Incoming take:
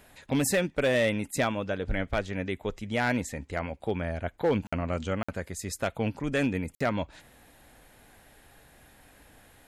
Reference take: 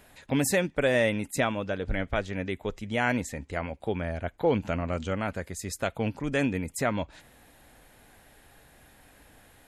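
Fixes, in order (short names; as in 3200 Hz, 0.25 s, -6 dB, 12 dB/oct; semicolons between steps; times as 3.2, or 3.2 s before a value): clip repair -18.5 dBFS; interpolate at 4.67/5.23/6.75, 55 ms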